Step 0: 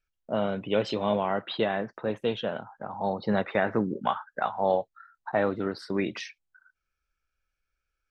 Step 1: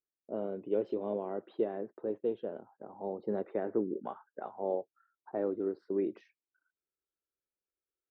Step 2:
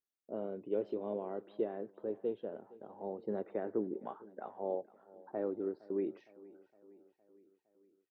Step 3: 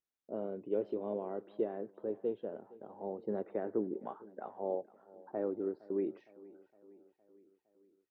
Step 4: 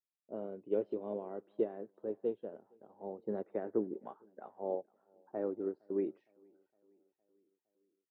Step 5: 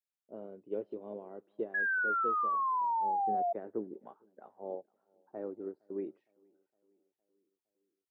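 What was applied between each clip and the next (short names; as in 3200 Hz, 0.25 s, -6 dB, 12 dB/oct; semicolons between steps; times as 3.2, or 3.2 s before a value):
band-pass 370 Hz, Q 2.9
feedback echo 0.462 s, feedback 58%, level -21 dB; gain -3.5 dB
high shelf 3000 Hz -6.5 dB; gain +1 dB
upward expander 1.5:1, over -54 dBFS; gain +2 dB
painted sound fall, 1.74–3.53, 680–1700 Hz -27 dBFS; gain -4 dB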